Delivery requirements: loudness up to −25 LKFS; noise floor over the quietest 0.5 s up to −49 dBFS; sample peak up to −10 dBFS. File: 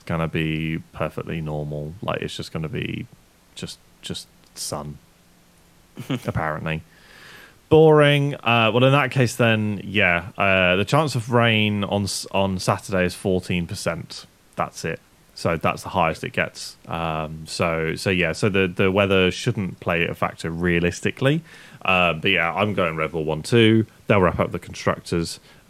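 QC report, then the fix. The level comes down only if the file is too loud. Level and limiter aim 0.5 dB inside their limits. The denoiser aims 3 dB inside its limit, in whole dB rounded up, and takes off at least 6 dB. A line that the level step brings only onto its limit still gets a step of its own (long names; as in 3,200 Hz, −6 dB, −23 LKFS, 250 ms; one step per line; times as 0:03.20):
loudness −21.5 LKFS: out of spec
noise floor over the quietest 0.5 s −55 dBFS: in spec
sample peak −3.0 dBFS: out of spec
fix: level −4 dB
brickwall limiter −10.5 dBFS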